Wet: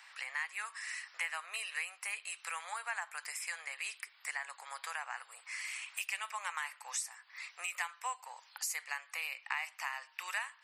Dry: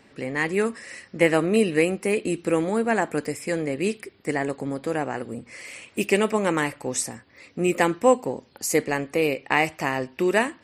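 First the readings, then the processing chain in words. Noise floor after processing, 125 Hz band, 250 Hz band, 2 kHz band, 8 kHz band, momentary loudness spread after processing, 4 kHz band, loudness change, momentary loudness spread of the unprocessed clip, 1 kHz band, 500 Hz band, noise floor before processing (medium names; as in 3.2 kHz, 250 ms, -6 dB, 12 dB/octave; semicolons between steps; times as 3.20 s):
-64 dBFS, under -40 dB, under -40 dB, -10.0 dB, -8.5 dB, 6 LU, -8.5 dB, -15.5 dB, 12 LU, -14.0 dB, -37.0 dB, -56 dBFS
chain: steep high-pass 930 Hz 36 dB/octave; compression 3:1, threshold -43 dBFS, peak gain reduction 18.5 dB; trim +3 dB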